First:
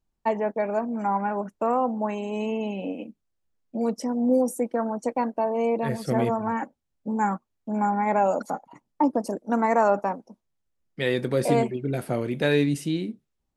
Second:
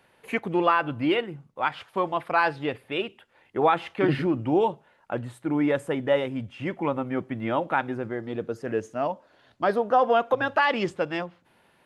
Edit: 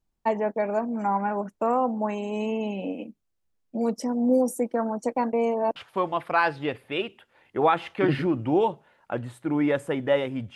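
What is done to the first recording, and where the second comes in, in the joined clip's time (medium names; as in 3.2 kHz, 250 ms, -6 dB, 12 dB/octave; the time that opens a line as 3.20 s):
first
5.33–5.76 s: reverse
5.76 s: go over to second from 1.76 s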